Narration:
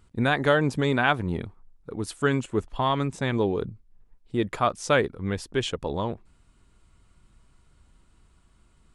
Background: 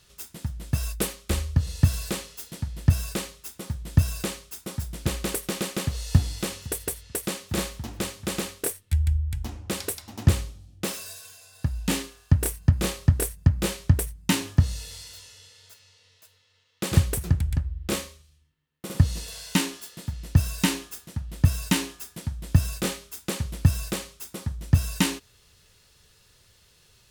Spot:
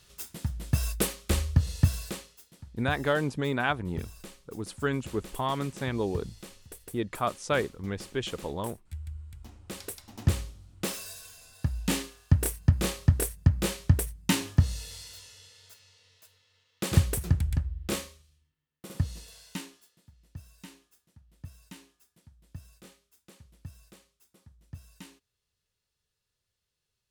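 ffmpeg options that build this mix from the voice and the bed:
-filter_complex "[0:a]adelay=2600,volume=-5.5dB[a];[1:a]volume=13.5dB,afade=t=out:st=1.56:d=0.88:silence=0.158489,afade=t=in:st=9.35:d=1.5:silence=0.199526,afade=t=out:st=17.58:d=2.42:silence=0.0749894[b];[a][b]amix=inputs=2:normalize=0"

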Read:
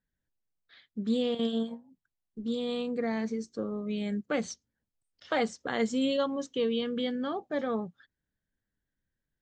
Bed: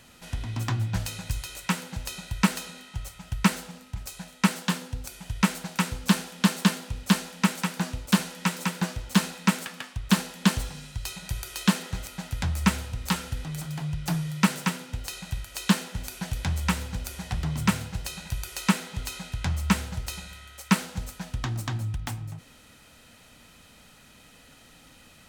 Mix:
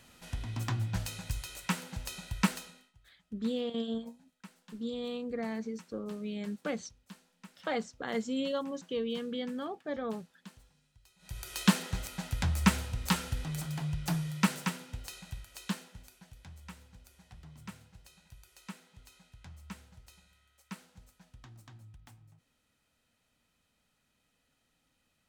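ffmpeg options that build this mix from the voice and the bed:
-filter_complex "[0:a]adelay=2350,volume=-5dB[a];[1:a]volume=21.5dB,afade=t=out:st=2.43:d=0.5:silence=0.0630957,afade=t=in:st=11.18:d=0.42:silence=0.0446684,afade=t=out:st=13.56:d=2.68:silence=0.0944061[b];[a][b]amix=inputs=2:normalize=0"

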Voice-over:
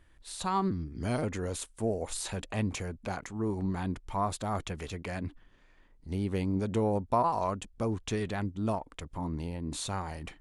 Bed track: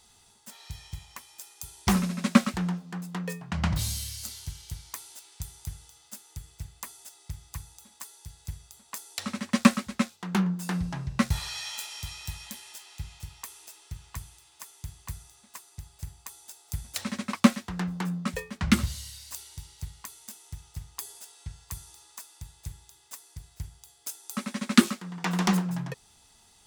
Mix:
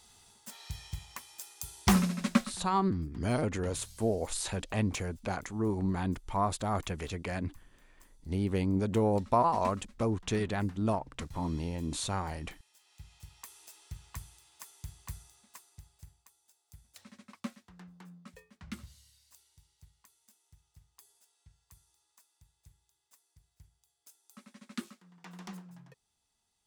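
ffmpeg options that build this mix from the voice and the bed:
-filter_complex "[0:a]adelay=2200,volume=1dB[a];[1:a]volume=17dB,afade=t=out:st=2.03:d=0.57:silence=0.0841395,afade=t=in:st=12.72:d=1.09:silence=0.133352,afade=t=out:st=15.16:d=1.15:silence=0.149624[b];[a][b]amix=inputs=2:normalize=0"

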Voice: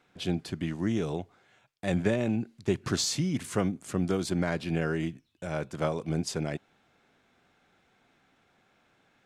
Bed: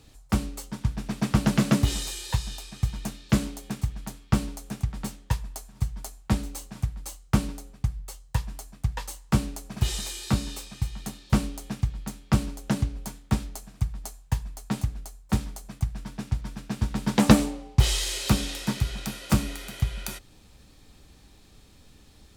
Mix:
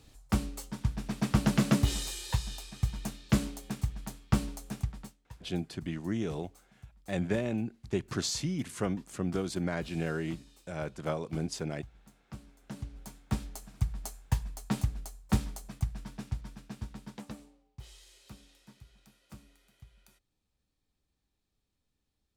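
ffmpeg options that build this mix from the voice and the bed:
-filter_complex "[0:a]adelay=5250,volume=-4dB[a];[1:a]volume=17dB,afade=t=out:st=4.79:d=0.35:silence=0.105925,afade=t=in:st=12.58:d=1.38:silence=0.0891251,afade=t=out:st=15.45:d=1.81:silence=0.0501187[b];[a][b]amix=inputs=2:normalize=0"

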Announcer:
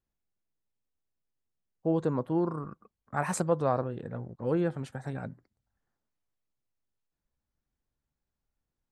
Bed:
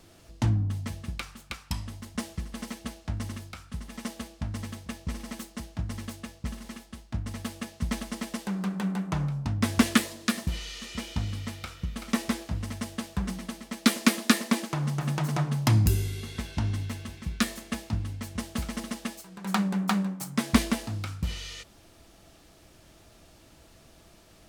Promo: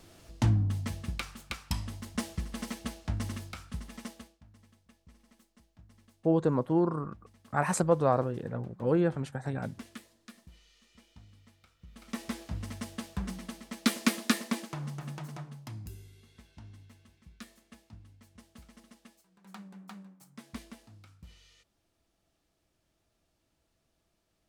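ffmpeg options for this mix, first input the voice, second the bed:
-filter_complex "[0:a]adelay=4400,volume=2dB[a];[1:a]volume=19dB,afade=t=out:st=3.63:d=0.78:silence=0.0630957,afade=t=in:st=11.79:d=0.77:silence=0.105925,afade=t=out:st=14.18:d=1.5:silence=0.149624[b];[a][b]amix=inputs=2:normalize=0"

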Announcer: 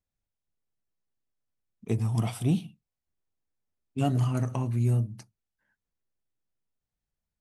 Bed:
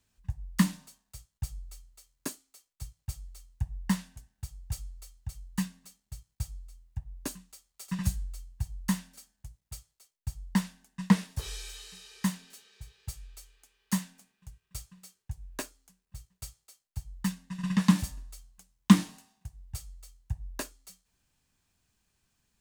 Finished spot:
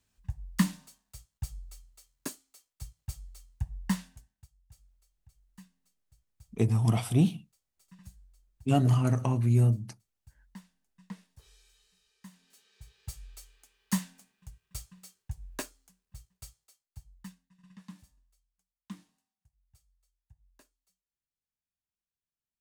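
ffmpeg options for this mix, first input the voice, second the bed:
-filter_complex "[0:a]adelay=4700,volume=2dB[a];[1:a]volume=20dB,afade=t=out:st=4.05:d=0.43:silence=0.1,afade=t=in:st=12.3:d=0.99:silence=0.0841395,afade=t=out:st=15.5:d=2.01:silence=0.0501187[b];[a][b]amix=inputs=2:normalize=0"

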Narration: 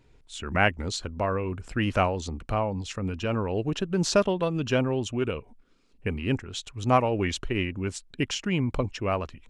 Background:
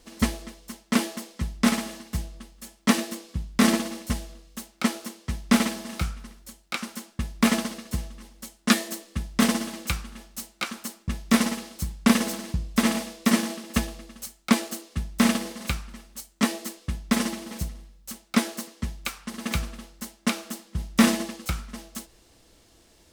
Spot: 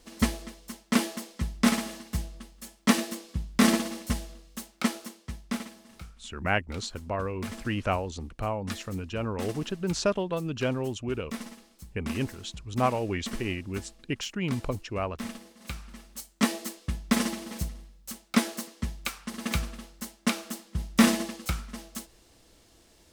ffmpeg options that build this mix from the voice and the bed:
-filter_complex "[0:a]adelay=5900,volume=-4dB[a];[1:a]volume=14dB,afade=t=out:st=4.7:d=0.96:silence=0.16788,afade=t=in:st=15.57:d=0.5:silence=0.16788[b];[a][b]amix=inputs=2:normalize=0"

